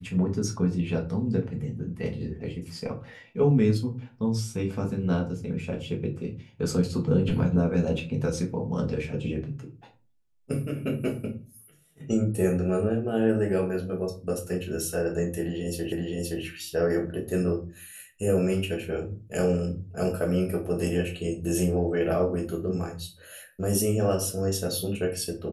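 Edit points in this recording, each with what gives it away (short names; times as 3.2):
15.92 repeat of the last 0.52 s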